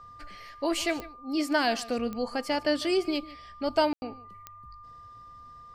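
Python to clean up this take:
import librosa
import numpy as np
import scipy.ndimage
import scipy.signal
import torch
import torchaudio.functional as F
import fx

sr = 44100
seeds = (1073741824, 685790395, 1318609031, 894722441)

y = fx.fix_declick_ar(x, sr, threshold=10.0)
y = fx.notch(y, sr, hz=1200.0, q=30.0)
y = fx.fix_ambience(y, sr, seeds[0], print_start_s=4.82, print_end_s=5.32, start_s=3.93, end_s=4.02)
y = fx.fix_echo_inverse(y, sr, delay_ms=149, level_db=-18.5)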